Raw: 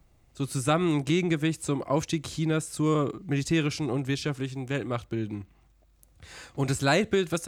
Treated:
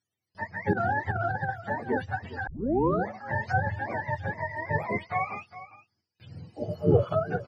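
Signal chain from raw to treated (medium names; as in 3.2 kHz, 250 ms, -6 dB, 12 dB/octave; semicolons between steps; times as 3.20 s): spectrum inverted on a logarithmic axis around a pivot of 500 Hz; 6.62–7.15 s: peaking EQ 480 Hz +8.5 dB 0.52 oct; gate with hold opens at -53 dBFS; 4.37–5.35 s: peaking EQ 1.1 kHz +4.5 dB 2.9 oct; 6.54–7.06 s: spectral replace 860–4100 Hz both; delay 408 ms -15 dB; 0.73–1.49 s: compressor with a negative ratio -27 dBFS, ratio -0.5; 2.47 s: tape start 0.63 s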